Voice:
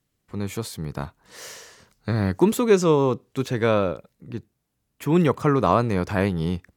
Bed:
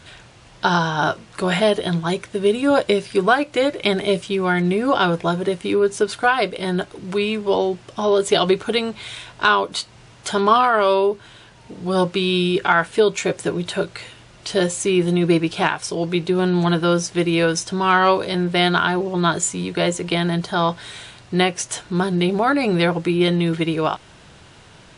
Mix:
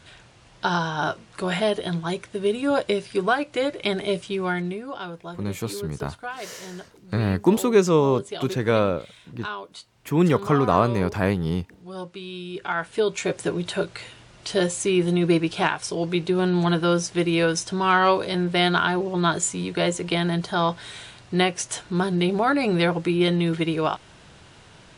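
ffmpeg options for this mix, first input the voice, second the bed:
-filter_complex "[0:a]adelay=5050,volume=0dB[a];[1:a]volume=8dB,afade=t=out:st=4.47:d=0.39:silence=0.281838,afade=t=in:st=12.46:d=0.94:silence=0.211349[b];[a][b]amix=inputs=2:normalize=0"

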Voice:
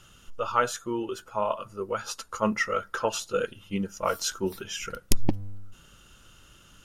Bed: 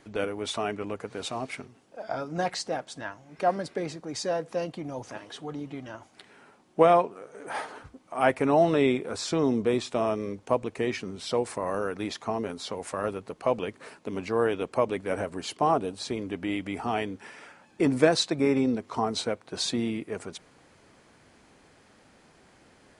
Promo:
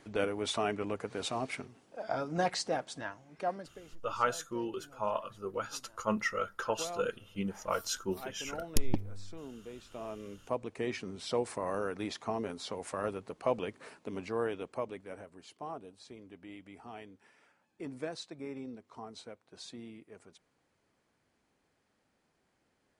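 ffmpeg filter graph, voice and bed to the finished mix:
-filter_complex "[0:a]adelay=3650,volume=-6dB[a];[1:a]volume=15dB,afade=t=out:st=2.87:d=0.95:silence=0.1,afade=t=in:st=9.8:d=1.35:silence=0.141254,afade=t=out:st=13.85:d=1.4:silence=0.211349[b];[a][b]amix=inputs=2:normalize=0"

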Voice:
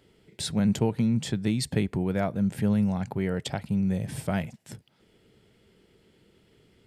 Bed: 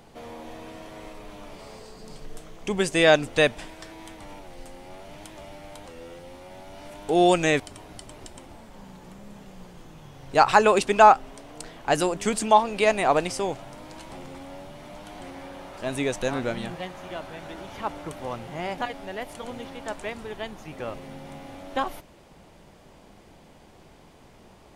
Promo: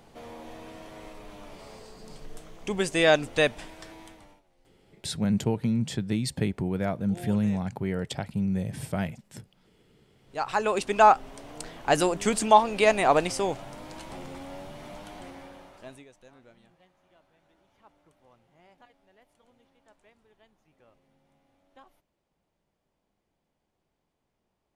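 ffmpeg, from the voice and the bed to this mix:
-filter_complex "[0:a]adelay=4650,volume=-1.5dB[a];[1:a]volume=21.5dB,afade=t=out:st=3.92:d=0.5:silence=0.0841395,afade=t=in:st=10.18:d=1.32:silence=0.0595662,afade=t=out:st=14.88:d=1.17:silence=0.0421697[b];[a][b]amix=inputs=2:normalize=0"

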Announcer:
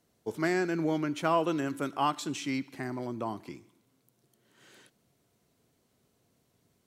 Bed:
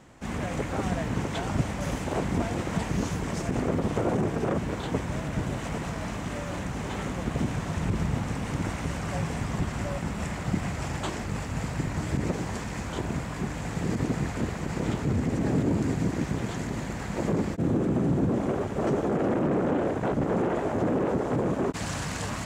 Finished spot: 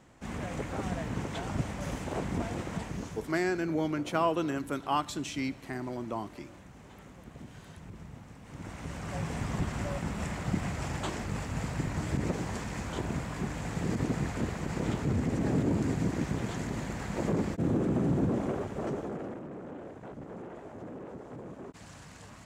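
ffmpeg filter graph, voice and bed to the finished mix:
-filter_complex "[0:a]adelay=2900,volume=-1dB[a];[1:a]volume=10.5dB,afade=t=out:st=2.56:d=0.84:silence=0.211349,afade=t=in:st=8.43:d=1.04:silence=0.158489,afade=t=out:st=18.24:d=1.19:silence=0.188365[b];[a][b]amix=inputs=2:normalize=0"

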